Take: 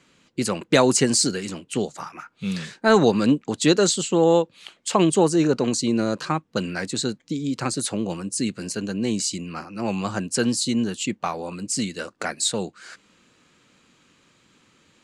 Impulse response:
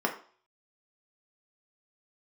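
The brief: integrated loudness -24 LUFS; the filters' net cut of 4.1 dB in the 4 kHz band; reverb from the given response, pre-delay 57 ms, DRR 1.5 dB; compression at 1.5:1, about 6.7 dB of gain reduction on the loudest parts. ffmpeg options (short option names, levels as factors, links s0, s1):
-filter_complex "[0:a]equalizer=f=4000:t=o:g=-5,acompressor=threshold=0.0282:ratio=1.5,asplit=2[s0][s1];[1:a]atrim=start_sample=2205,adelay=57[s2];[s1][s2]afir=irnorm=-1:irlink=0,volume=0.266[s3];[s0][s3]amix=inputs=2:normalize=0,volume=1.19"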